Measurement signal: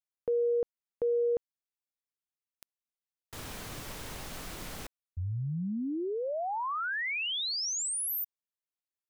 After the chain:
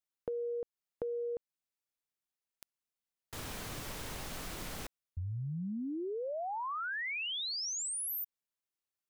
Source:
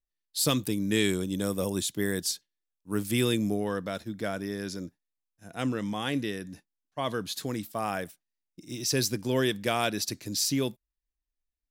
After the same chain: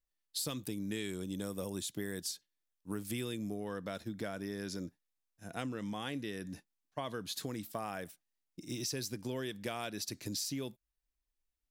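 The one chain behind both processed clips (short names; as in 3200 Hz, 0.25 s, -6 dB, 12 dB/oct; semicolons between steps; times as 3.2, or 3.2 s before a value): compressor 6:1, threshold -36 dBFS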